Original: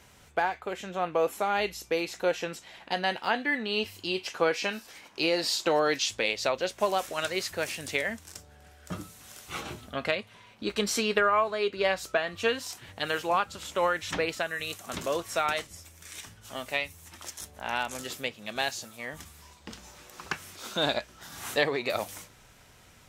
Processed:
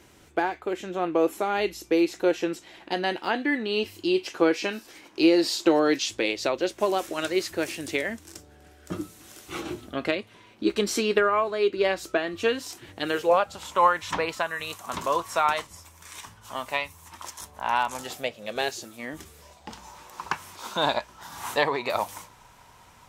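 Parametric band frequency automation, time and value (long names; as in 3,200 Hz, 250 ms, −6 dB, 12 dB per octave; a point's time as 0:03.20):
parametric band +14 dB 0.52 octaves
0:13.09 330 Hz
0:13.69 1,000 Hz
0:17.90 1,000 Hz
0:19.04 270 Hz
0:19.78 960 Hz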